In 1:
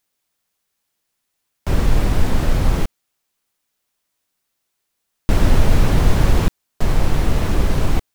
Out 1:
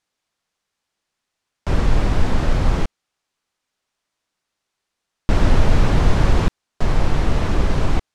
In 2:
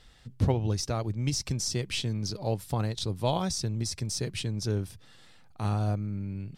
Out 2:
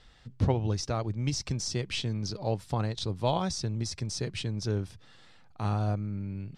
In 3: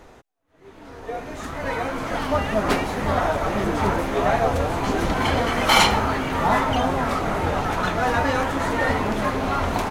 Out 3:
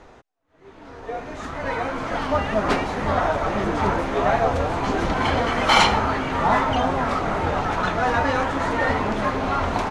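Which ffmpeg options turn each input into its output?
ffmpeg -i in.wav -filter_complex "[0:a]lowpass=6800,acrossover=split=1400[link_01][link_02];[link_01]crystalizer=i=6.5:c=0[link_03];[link_03][link_02]amix=inputs=2:normalize=0,volume=-1dB" out.wav

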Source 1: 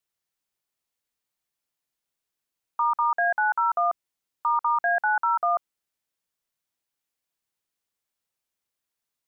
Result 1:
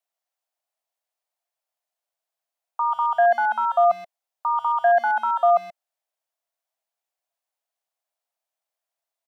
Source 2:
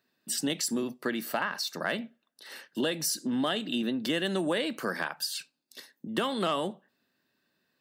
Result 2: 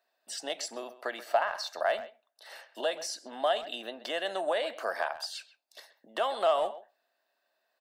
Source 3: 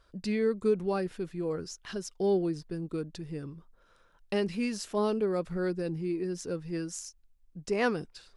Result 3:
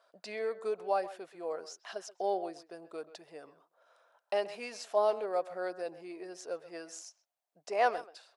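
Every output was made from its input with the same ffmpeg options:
ffmpeg -i in.wav -filter_complex "[0:a]acrossover=split=7800[link_01][link_02];[link_02]acompressor=threshold=-55dB:ratio=4:attack=1:release=60[link_03];[link_01][link_03]amix=inputs=2:normalize=0,highpass=frequency=670:width_type=q:width=4.9,asplit=2[link_04][link_05];[link_05]adelay=130,highpass=300,lowpass=3400,asoftclip=type=hard:threshold=-17.5dB,volume=-15dB[link_06];[link_04][link_06]amix=inputs=2:normalize=0,volume=-4dB" out.wav

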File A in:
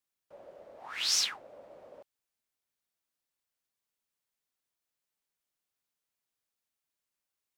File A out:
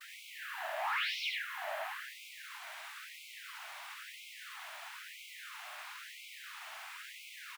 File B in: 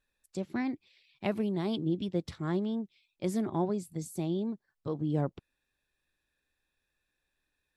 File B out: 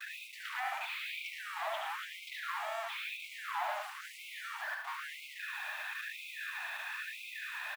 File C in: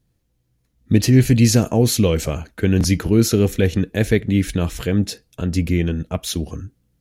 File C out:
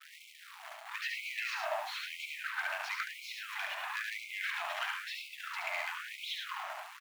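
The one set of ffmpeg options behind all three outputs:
ffmpeg -i in.wav -filter_complex "[0:a]aeval=exprs='val(0)+0.5*0.0794*sgn(val(0))':channel_layout=same,agate=range=-33dB:threshold=-25dB:ratio=3:detection=peak,acrossover=split=470 3100:gain=0.158 1 0.0708[link_01][link_02][link_03];[link_01][link_02][link_03]amix=inputs=3:normalize=0,acrossover=split=280|4100[link_04][link_05][link_06];[link_04]acompressor=threshold=-41dB:ratio=4[link_07];[link_05]acompressor=threshold=-28dB:ratio=4[link_08];[link_06]acompressor=threshold=-59dB:ratio=4[link_09];[link_07][link_08][link_09]amix=inputs=3:normalize=0,acrusher=bits=7:mix=0:aa=0.5,volume=25.5dB,asoftclip=hard,volume=-25.5dB,asplit=2[link_10][link_11];[link_11]aecho=0:1:72|107:0.596|0.447[link_12];[link_10][link_12]amix=inputs=2:normalize=0,afftfilt=real='re*gte(b*sr/1024,560*pow(2100/560,0.5+0.5*sin(2*PI*1*pts/sr)))':imag='im*gte(b*sr/1024,560*pow(2100/560,0.5+0.5*sin(2*PI*1*pts/sr)))':win_size=1024:overlap=0.75,volume=-2.5dB" out.wav

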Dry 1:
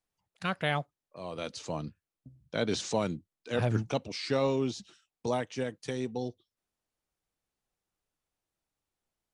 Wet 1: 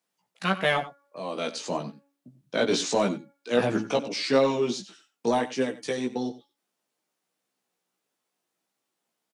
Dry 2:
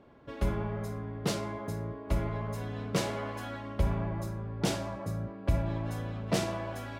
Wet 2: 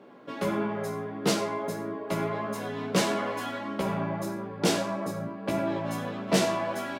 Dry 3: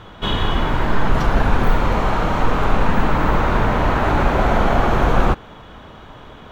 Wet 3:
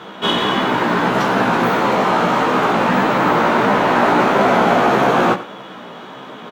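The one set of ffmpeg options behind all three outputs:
ffmpeg -i in.wav -filter_complex "[0:a]highpass=frequency=180:width=0.5412,highpass=frequency=180:width=1.3066,bandreject=frequency=281.8:width_type=h:width=4,bandreject=frequency=563.6:width_type=h:width=4,bandreject=frequency=845.4:width_type=h:width=4,bandreject=frequency=1127.2:width_type=h:width=4,bandreject=frequency=1409:width_type=h:width=4,bandreject=frequency=1690.8:width_type=h:width=4,bandreject=frequency=1972.6:width_type=h:width=4,bandreject=frequency=2254.4:width_type=h:width=4,asplit=2[link_01][link_02];[link_02]asoftclip=type=tanh:threshold=-25dB,volume=-5dB[link_03];[link_01][link_03]amix=inputs=2:normalize=0,flanger=delay=15:depth=2.2:speed=1.6,aecho=1:1:91:0.168,volume=6.5dB" out.wav

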